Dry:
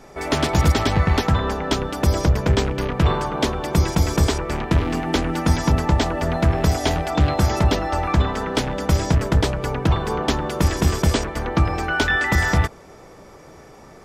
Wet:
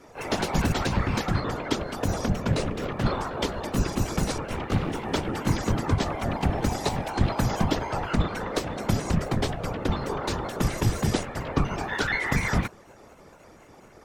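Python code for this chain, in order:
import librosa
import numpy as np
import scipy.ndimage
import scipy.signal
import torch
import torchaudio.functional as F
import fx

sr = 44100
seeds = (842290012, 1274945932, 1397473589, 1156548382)

y = fx.pitch_trill(x, sr, semitones=3.0, every_ms=120)
y = fx.whisperise(y, sr, seeds[0])
y = F.gain(torch.from_numpy(y), -6.0).numpy()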